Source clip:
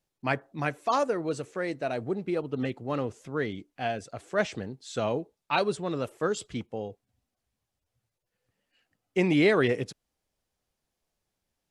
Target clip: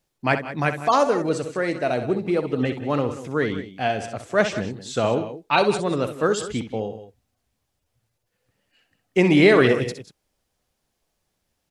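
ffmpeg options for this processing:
ffmpeg -i in.wav -af "aecho=1:1:63|160|187:0.316|0.106|0.2,volume=7dB" out.wav

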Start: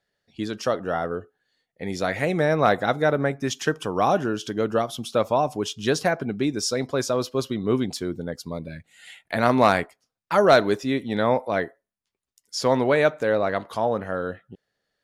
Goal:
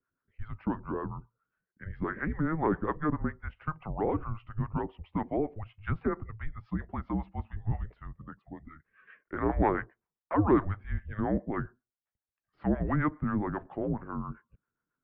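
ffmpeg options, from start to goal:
ffmpeg -i in.wav -filter_complex "[0:a]highpass=frequency=240:width_type=q:width=0.5412,highpass=frequency=240:width_type=q:width=1.307,lowpass=frequency=2300:width_type=q:width=0.5176,lowpass=frequency=2300:width_type=q:width=0.7071,lowpass=frequency=2300:width_type=q:width=1.932,afreqshift=-310,asettb=1/sr,asplit=3[link_01][link_02][link_03];[link_01]atrim=end=8.074[link_04];[link_02]atrim=start=8.07:end=8.63,asetpts=PTS-STARTPTS,afade=type=in:duration=0.004:curve=qsin,afade=type=out:start_time=0.556:duration=0.004:curve=qsin,highpass=frequency=140:poles=1[link_05];[link_03]atrim=start=8.626[link_06];[link_04][link_05]acrossfade=duration=0.004:curve1=hsin:curve2=qsin[link_07];[link_07][link_06]acrossfade=duration=0.004:curve1=qsin:curve2=hsin,acrossover=split=510[link_08][link_09];[link_08]aeval=exprs='val(0)*(1-0.7/2+0.7/2*cos(2*PI*7.4*n/s))':channel_layout=same[link_10];[link_09]aeval=exprs='val(0)*(1-0.7/2-0.7/2*cos(2*PI*7.4*n/s))':channel_layout=same[link_11];[link_10][link_11]amix=inputs=2:normalize=0,volume=-4.5dB" out.wav

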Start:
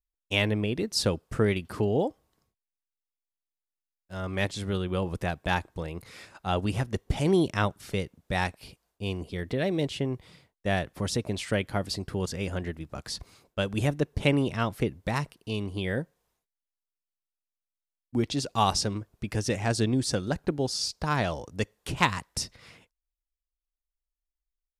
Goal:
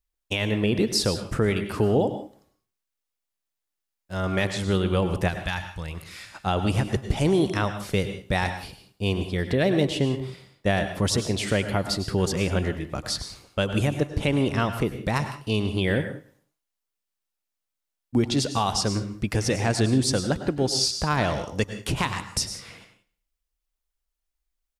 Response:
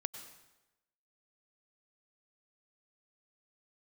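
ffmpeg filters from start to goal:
-filter_complex "[0:a]alimiter=limit=-19dB:level=0:latency=1:release=310,asettb=1/sr,asplit=3[link_01][link_02][link_03];[link_01]atrim=end=5.284[link_04];[link_02]atrim=start=5.28:end=6.34,asetpts=PTS-STARTPTS,afade=type=in:duration=0.004:curve=qsin,afade=type=out:start_time=1.056:duration=0.004:curve=qsin,equalizer=frequency=400:width_type=o:width=2.2:gain=-13.5[link_05];[link_03]atrim=start=6.336[link_06];[link_04][link_05]acrossfade=duration=0.004:curve1=hsin:curve2=qsin[link_07];[link_07][link_06]acrossfade=duration=0.004:curve1=qsin:curve2=hsin,aecho=1:1:107|214|321:0.106|0.0339|0.0108[link_08];[1:a]atrim=start_sample=2205,afade=type=out:start_time=0.24:duration=0.01,atrim=end_sample=11025[link_09];[link_08][link_09]afir=irnorm=-1:irlink=0,volume=8dB"

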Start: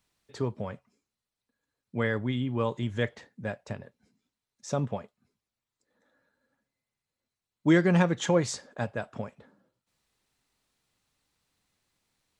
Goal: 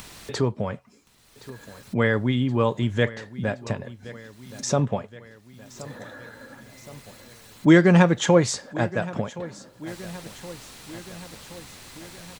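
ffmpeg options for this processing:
ffmpeg -i in.wav -af "acompressor=mode=upward:threshold=-30dB:ratio=2.5,aecho=1:1:1071|2142|3213|4284|5355:0.126|0.0743|0.0438|0.0259|0.0153,volume=7dB" out.wav

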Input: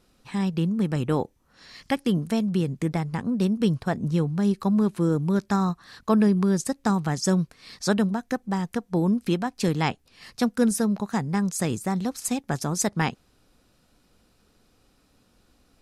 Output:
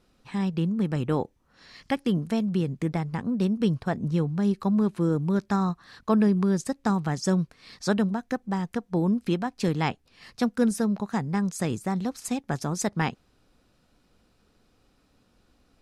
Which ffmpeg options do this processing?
ffmpeg -i in.wav -af "highshelf=frequency=7000:gain=-8.5,volume=-1.5dB" out.wav

